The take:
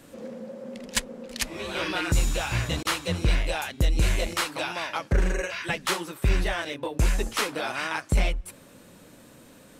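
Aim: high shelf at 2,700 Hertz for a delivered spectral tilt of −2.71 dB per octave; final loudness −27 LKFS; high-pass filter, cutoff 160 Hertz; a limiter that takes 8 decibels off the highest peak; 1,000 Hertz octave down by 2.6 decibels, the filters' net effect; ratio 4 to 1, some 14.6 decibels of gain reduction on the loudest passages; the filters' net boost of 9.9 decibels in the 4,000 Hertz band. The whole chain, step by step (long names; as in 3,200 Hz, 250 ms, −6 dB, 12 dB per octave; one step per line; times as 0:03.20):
high-pass filter 160 Hz
parametric band 1,000 Hz −5.5 dB
high-shelf EQ 2,700 Hz +9 dB
parametric band 4,000 Hz +5.5 dB
downward compressor 4 to 1, threshold −31 dBFS
level +7 dB
brickwall limiter −15 dBFS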